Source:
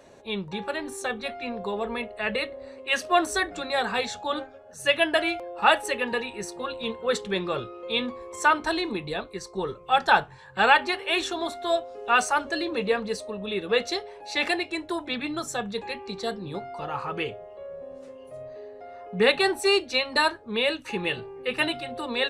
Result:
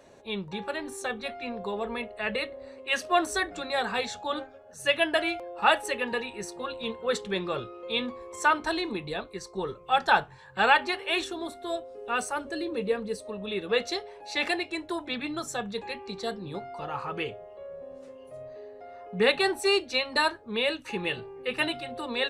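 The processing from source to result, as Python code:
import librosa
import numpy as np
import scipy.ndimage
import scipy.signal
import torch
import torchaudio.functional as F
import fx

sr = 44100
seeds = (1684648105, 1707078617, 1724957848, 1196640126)

y = fx.spec_box(x, sr, start_s=11.25, length_s=2.0, low_hz=590.0, high_hz=7700.0, gain_db=-6)
y = y * librosa.db_to_amplitude(-2.5)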